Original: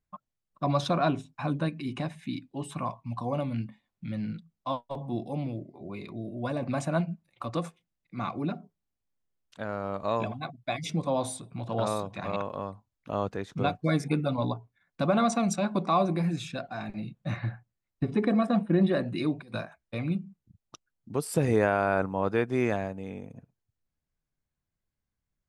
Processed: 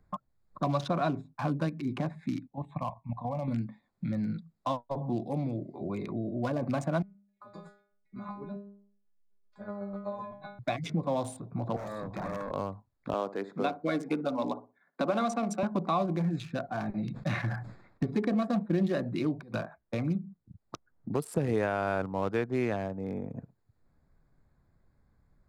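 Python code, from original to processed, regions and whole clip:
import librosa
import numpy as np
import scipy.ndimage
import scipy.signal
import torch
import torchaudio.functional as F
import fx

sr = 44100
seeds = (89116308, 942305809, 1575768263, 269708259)

y = fx.chain(x, sr, fx.lowpass(hz=3900.0, slope=12),
    fx.level_steps(step_db=11),
    fx.fixed_phaser(hz=1400.0, stages=6), at=(2.47, 3.48))
y = fx.chain(y, sr, fx.chopper(hz=7.9, depth_pct=60, duty_pct=25),
    fx.stiff_resonator(f0_hz=200.0, decay_s=0.46, stiffness=0.002), at=(7.02, 10.59))
y = fx.chain(y, sr, fx.tube_stage(drive_db=38.0, bias=0.4),
    fx.band_squash(depth_pct=40), at=(11.76, 12.51))
y = fx.chain(y, sr, fx.highpass(hz=230.0, slope=24),
    fx.echo_filtered(ms=61, feedback_pct=22, hz=1200.0, wet_db=-13.0), at=(13.13, 15.63))
y = fx.chain(y, sr, fx.env_lowpass(base_hz=2400.0, full_db=-30.0),
    fx.high_shelf(hz=2100.0, db=10.5),
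    fx.sustainer(db_per_s=88.0), at=(17.03, 18.03))
y = fx.wiener(y, sr, points=15)
y = fx.band_squash(y, sr, depth_pct=70)
y = F.gain(torch.from_numpy(y), -1.5).numpy()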